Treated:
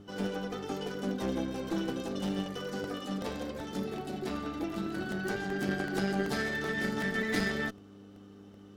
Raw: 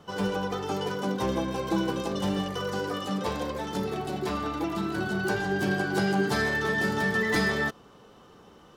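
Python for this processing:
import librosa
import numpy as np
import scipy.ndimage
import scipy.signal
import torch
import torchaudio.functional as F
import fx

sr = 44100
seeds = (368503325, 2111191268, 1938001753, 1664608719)

y = fx.dmg_buzz(x, sr, base_hz=100.0, harmonics=4, level_db=-44.0, tilt_db=-5, odd_only=False)
y = fx.cheby_harmonics(y, sr, harmonics=(2,), levels_db=(-6,), full_scale_db=-12.5)
y = fx.graphic_eq_31(y, sr, hz=(100, 250, 1000), db=(-9, 9, -9))
y = fx.buffer_crackle(y, sr, first_s=0.94, period_s=0.38, block=64, kind='repeat')
y = F.gain(torch.from_numpy(y), -6.5).numpy()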